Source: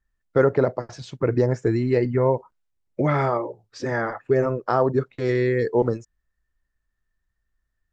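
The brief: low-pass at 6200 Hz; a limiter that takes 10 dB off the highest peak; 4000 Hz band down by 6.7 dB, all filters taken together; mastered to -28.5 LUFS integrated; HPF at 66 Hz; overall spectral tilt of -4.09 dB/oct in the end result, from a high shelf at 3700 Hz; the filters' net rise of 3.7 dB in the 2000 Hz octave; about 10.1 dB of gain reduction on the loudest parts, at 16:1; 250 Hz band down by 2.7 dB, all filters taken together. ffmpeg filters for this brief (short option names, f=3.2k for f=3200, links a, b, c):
-af "highpass=66,lowpass=6.2k,equalizer=f=250:t=o:g=-4,equalizer=f=2k:t=o:g=7,highshelf=f=3.7k:g=-6.5,equalizer=f=4k:t=o:g=-5,acompressor=threshold=-24dB:ratio=16,volume=4dB,alimiter=limit=-16.5dB:level=0:latency=1"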